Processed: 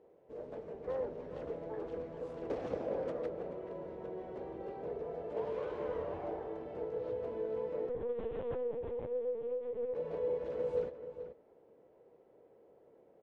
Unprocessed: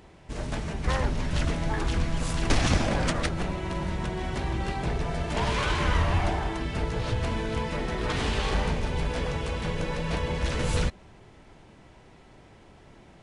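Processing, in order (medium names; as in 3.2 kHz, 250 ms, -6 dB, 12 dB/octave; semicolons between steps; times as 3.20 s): band-pass filter 480 Hz, Q 5.8; echo from a far wall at 74 m, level -10 dB; 7.89–9.95 s: LPC vocoder at 8 kHz pitch kept; trim +1.5 dB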